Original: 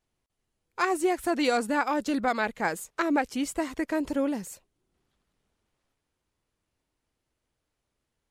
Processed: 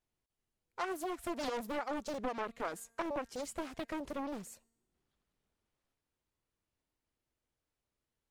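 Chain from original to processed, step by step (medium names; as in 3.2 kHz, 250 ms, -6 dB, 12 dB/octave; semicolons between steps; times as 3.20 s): compression 4:1, threshold -26 dBFS, peak gain reduction 6 dB; feedback comb 230 Hz, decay 1 s, mix 30%; loudspeaker Doppler distortion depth 0.99 ms; trim -5 dB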